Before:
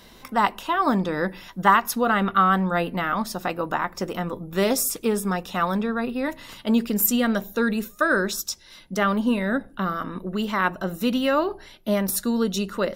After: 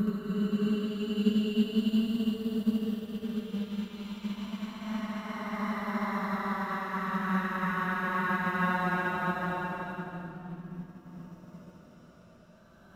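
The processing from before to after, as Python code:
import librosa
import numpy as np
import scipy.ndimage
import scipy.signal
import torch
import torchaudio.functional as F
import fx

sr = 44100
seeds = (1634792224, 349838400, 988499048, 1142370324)

p1 = scipy.signal.sosfilt(scipy.signal.butter(2, 41.0, 'highpass', fs=sr, output='sos'), x)
p2 = fx.bass_treble(p1, sr, bass_db=11, treble_db=0)
p3 = p2 + fx.echo_swing(p2, sr, ms=822, ratio=3, feedback_pct=61, wet_db=-22.0, dry=0)
p4 = np.sign(p3) * np.maximum(np.abs(p3) - 10.0 ** (-42.5 / 20.0), 0.0)
p5 = fx.paulstretch(p4, sr, seeds[0], factor=29.0, window_s=0.1, from_s=10.35)
p6 = p5 + 10.0 ** (-7.0 / 20.0) * np.pad(p5, (int(74 * sr / 1000.0), 0))[:len(p5)]
p7 = fx.upward_expand(p6, sr, threshold_db=-34.0, expansion=1.5)
y = p7 * librosa.db_to_amplitude(-8.0)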